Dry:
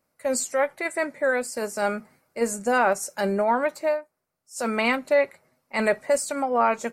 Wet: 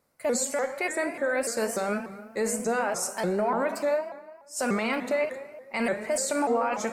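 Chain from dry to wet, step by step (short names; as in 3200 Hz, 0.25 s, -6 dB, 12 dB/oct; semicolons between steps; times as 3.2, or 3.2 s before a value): limiter -21 dBFS, peak gain reduction 11.5 dB; reverb RT60 1.3 s, pre-delay 25 ms, DRR 7.5 dB; shaped vibrato saw up 3.4 Hz, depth 160 cents; gain +2 dB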